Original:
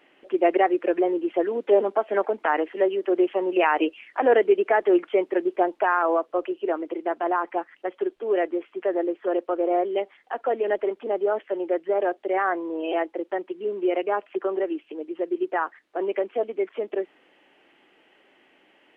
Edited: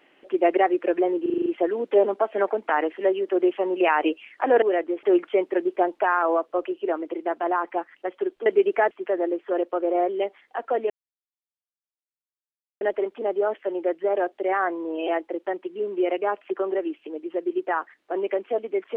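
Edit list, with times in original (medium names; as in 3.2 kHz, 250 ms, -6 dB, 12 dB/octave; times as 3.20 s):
1.22 s: stutter 0.04 s, 7 plays
4.38–4.83 s: swap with 8.26–8.67 s
10.66 s: insert silence 1.91 s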